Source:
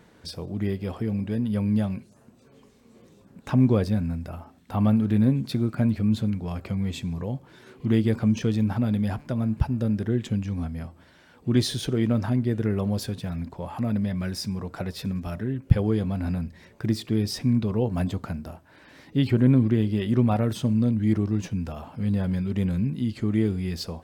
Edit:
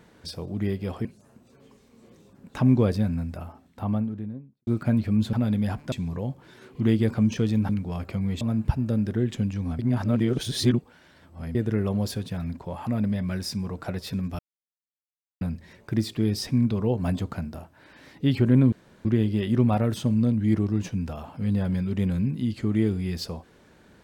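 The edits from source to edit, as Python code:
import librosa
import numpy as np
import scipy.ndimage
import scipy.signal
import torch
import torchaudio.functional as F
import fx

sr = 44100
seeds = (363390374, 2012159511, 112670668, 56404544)

y = fx.studio_fade_out(x, sr, start_s=4.25, length_s=1.34)
y = fx.edit(y, sr, fx.cut(start_s=1.05, length_s=0.92),
    fx.swap(start_s=6.25, length_s=0.72, other_s=8.74, other_length_s=0.59),
    fx.reverse_span(start_s=10.71, length_s=1.76),
    fx.silence(start_s=15.31, length_s=1.02),
    fx.insert_room_tone(at_s=19.64, length_s=0.33), tone=tone)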